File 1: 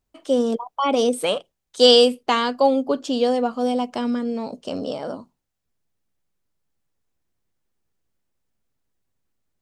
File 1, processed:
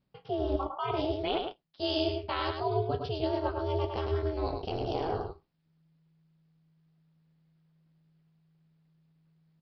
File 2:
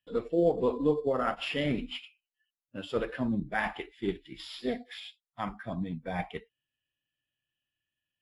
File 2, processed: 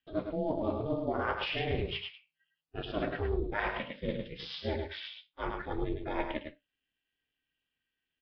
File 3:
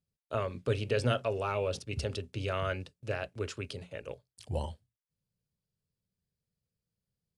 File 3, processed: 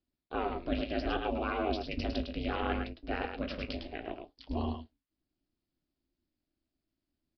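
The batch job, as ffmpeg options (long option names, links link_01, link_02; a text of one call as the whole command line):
ffmpeg -i in.wav -af "areverse,acompressor=threshold=-30dB:ratio=8,areverse,flanger=delay=9.3:depth=9.9:regen=-51:speed=0.67:shape=sinusoidal,aecho=1:1:105:0.531,aresample=11025,aresample=44100,aeval=exprs='val(0)*sin(2*PI*160*n/s)':channel_layout=same,volume=8dB" out.wav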